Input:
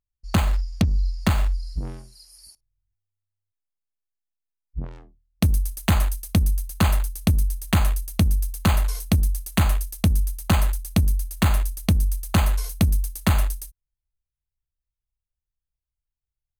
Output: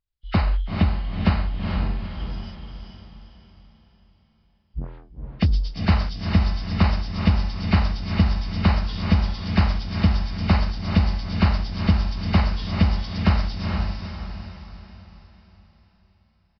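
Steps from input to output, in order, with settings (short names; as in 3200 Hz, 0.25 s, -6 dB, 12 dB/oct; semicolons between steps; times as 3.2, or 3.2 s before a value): nonlinear frequency compression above 1300 Hz 1.5:1; downsampling 11025 Hz; diffused feedback echo 0.451 s, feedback 44%, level -4 dB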